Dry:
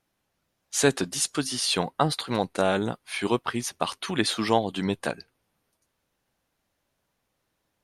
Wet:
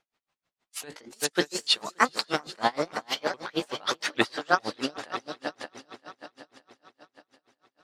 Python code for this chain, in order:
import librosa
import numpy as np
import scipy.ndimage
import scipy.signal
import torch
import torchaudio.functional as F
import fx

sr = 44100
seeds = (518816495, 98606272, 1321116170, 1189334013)

y = fx.pitch_ramps(x, sr, semitones=9.0, every_ms=417)
y = scipy.signal.sosfilt(scipy.signal.butter(2, 5700.0, 'lowpass', fs=sr, output='sos'), y)
y = fx.rider(y, sr, range_db=10, speed_s=0.5)
y = fx.low_shelf(y, sr, hz=320.0, db=-12.0)
y = fx.echo_heads(y, sr, ms=192, heads='second and third', feedback_pct=52, wet_db=-12.0)
y = y * 10.0 ** (-31 * (0.5 - 0.5 * np.cos(2.0 * np.pi * 6.4 * np.arange(len(y)) / sr)) / 20.0)
y = y * librosa.db_to_amplitude(7.5)